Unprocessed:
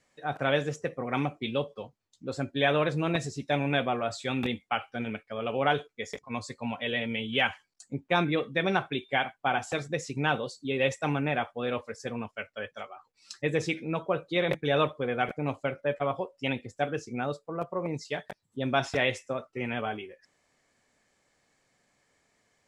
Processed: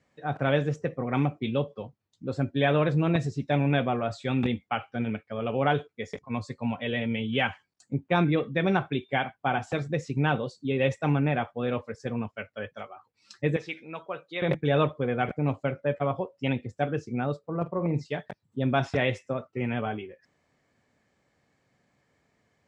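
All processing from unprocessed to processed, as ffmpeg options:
-filter_complex "[0:a]asettb=1/sr,asplit=3[a][b][c];[a]atrim=end=13.564[d];[b]atrim=start=13.56:end=14.42,asetpts=PTS-STARTPTS,afade=t=in:d=0.004:c=qsin,afade=t=out:st=0.856:d=0.004:c=qsin,highpass=f=1.4k:p=1,acrossover=split=4800[e][f];[f]acompressor=threshold=-55dB:ratio=4:attack=1:release=60[g];[e][g]amix=inputs=2:normalize=0[h];[c]atrim=start=14.416[i];[d][h]acrossfade=d=0.004:c1=hsin:c2=qsin[j];[j][i]acrossfade=d=0.004:c1=qsin:c2=hsin,asettb=1/sr,asplit=3[k][l][m];[k]atrim=end=17.394[n];[l]atrim=start=17.39:end=18.06,asetpts=PTS-STARTPTS,afade=t=in:d=0.004:c=qsin,afade=t=out:st=0.666:d=0.004:c=qsin,bass=f=250:g=2,treble=f=4k:g=-3,asplit=2[o][p];[p]adelay=47,volume=-13.5dB[q];[o][q]amix=inputs=2:normalize=0,atrim=end_sample=29547[r];[m]atrim=start=18.056[s];[n][r]acrossfade=d=0.004:c1=hsin:c2=qsin[t];[t][s]acrossfade=d=0.004:c1=qsin:c2=hsin,highpass=99,aemphasis=mode=reproduction:type=bsi"

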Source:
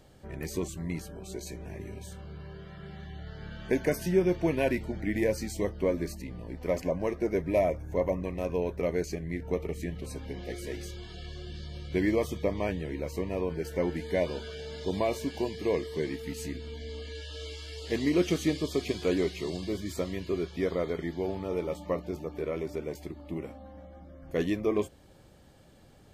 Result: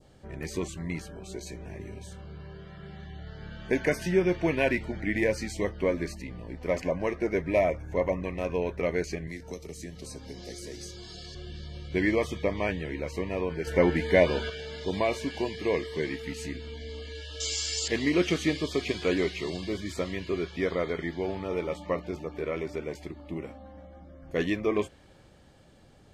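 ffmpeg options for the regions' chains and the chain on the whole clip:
-filter_complex "[0:a]asettb=1/sr,asplit=3[a][b][c];[a]atrim=end=9.274[d];[b]atrim=start=9.27:end=11.35,asetpts=PTS-STARTPTS,afade=t=in:d=0.004:c=qsin,afade=t=out:st=2.076:d=0.004:c=qsin,highshelf=f=3.8k:t=q:w=1.5:g=9.5,acrossover=split=100|370|3300[e][f][g][h];[e]acompressor=threshold=-52dB:ratio=3[i];[f]acompressor=threshold=-43dB:ratio=3[j];[g]acompressor=threshold=-46dB:ratio=3[k];[h]acompressor=threshold=-45dB:ratio=3[l];[i][j][k][l]amix=inputs=4:normalize=0[m];[c]atrim=start=11.346[n];[d][m]acrossfade=d=0.004:c1=hsin:c2=qsin[o];[o][n]acrossfade=d=0.004:c1=qsin:c2=hsin,asettb=1/sr,asplit=3[p][q][r];[p]atrim=end=13.674[s];[q]atrim=start=13.67:end=14.5,asetpts=PTS-STARTPTS,afade=t=in:d=0.004:c=qsin,afade=t=out:st=0.826:d=0.004:c=qsin,equalizer=f=5.9k:w=0.44:g=-3.5,acontrast=63[t];[r]atrim=start=14.496[u];[s][t]acrossfade=d=0.004:c1=hsin:c2=qsin[v];[v][u]acrossfade=d=0.004:c1=qsin:c2=hsin,asettb=1/sr,asplit=3[w][x][y];[w]atrim=end=17.404[z];[x]atrim=start=17.4:end=17.88,asetpts=PTS-STARTPTS,afade=t=in:d=0.004:c=qsin,afade=t=out:st=0.476:d=0.004:c=qsin,lowpass=f=7.4k:t=q:w=8.9,equalizer=f=5.7k:t=o:w=0.96:g=13[aa];[y]atrim=start=17.876[ab];[z][aa]acrossfade=d=0.004:c1=hsin:c2=qsin[ac];[ac][ab]acrossfade=d=0.004:c1=qsin:c2=hsin,lowpass=9.3k,adynamicequalizer=threshold=0.00447:dfrequency=2000:dqfactor=0.72:tfrequency=2000:tqfactor=0.72:attack=5:release=100:ratio=0.375:range=3.5:mode=boostabove:tftype=bell"

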